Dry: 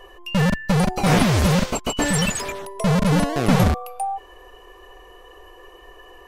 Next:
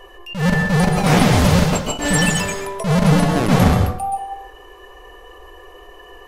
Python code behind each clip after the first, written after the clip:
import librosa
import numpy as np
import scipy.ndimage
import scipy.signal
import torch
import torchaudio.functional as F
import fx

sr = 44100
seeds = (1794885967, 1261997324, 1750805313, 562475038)

y = fx.rev_plate(x, sr, seeds[0], rt60_s=0.58, hf_ratio=0.65, predelay_ms=115, drr_db=4.0)
y = fx.attack_slew(y, sr, db_per_s=130.0)
y = F.gain(torch.from_numpy(y), 2.5).numpy()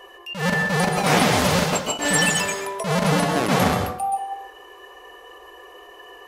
y = fx.highpass(x, sr, hz=400.0, slope=6)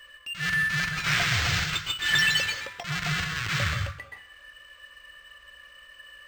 y = scipy.signal.sosfilt(scipy.signal.cheby2(4, 40, [220.0, 850.0], 'bandstop', fs=sr, output='sos'), x)
y = np.interp(np.arange(len(y)), np.arange(len(y))[::4], y[::4])